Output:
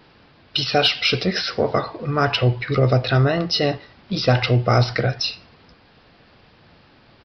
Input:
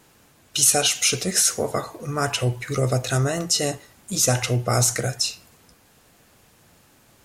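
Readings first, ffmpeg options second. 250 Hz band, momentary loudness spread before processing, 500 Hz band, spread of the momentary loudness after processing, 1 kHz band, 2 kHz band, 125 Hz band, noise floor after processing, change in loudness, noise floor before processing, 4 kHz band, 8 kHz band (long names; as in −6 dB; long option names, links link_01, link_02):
+5.0 dB, 10 LU, +5.0 dB, 8 LU, +5.0 dB, +5.0 dB, +5.0 dB, −53 dBFS, +1.5 dB, −57 dBFS, +3.5 dB, −21.5 dB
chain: -af "aresample=11025,aresample=44100,acontrast=30"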